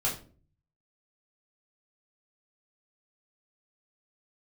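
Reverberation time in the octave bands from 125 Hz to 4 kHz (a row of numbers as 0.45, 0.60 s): 0.90, 0.60, 0.50, 0.35, 0.30, 0.30 s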